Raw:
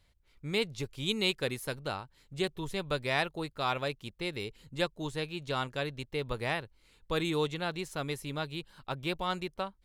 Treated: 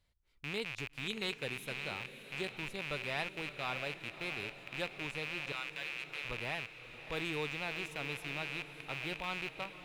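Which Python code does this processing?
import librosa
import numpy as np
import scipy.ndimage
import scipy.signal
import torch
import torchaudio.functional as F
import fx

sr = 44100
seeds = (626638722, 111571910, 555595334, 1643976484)

p1 = fx.rattle_buzz(x, sr, strikes_db=-49.0, level_db=-20.0)
p2 = fx.highpass(p1, sr, hz=1100.0, slope=12, at=(5.52, 6.25))
p3 = p2 + fx.echo_diffused(p2, sr, ms=617, feedback_pct=61, wet_db=-12.0, dry=0)
y = F.gain(torch.from_numpy(p3), -9.0).numpy()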